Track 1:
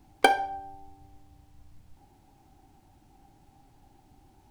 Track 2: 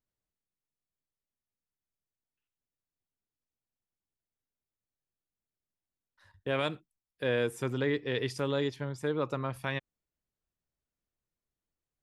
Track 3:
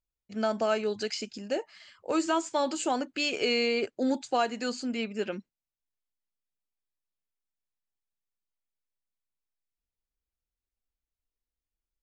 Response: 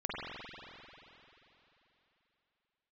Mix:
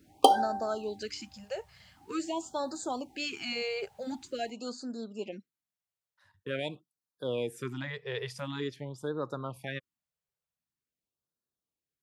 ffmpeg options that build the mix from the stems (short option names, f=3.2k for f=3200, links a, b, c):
-filter_complex "[0:a]equalizer=f=140:w=1.8:g=-4.5,volume=1.5dB[a];[1:a]volume=-3dB[b];[2:a]volume=-6dB[c];[a][b][c]amix=inputs=3:normalize=0,highpass=110,afftfilt=real='re*(1-between(b*sr/1024,260*pow(2600/260,0.5+0.5*sin(2*PI*0.46*pts/sr))/1.41,260*pow(2600/260,0.5+0.5*sin(2*PI*0.46*pts/sr))*1.41))':imag='im*(1-between(b*sr/1024,260*pow(2600/260,0.5+0.5*sin(2*PI*0.46*pts/sr))/1.41,260*pow(2600/260,0.5+0.5*sin(2*PI*0.46*pts/sr))*1.41))':win_size=1024:overlap=0.75"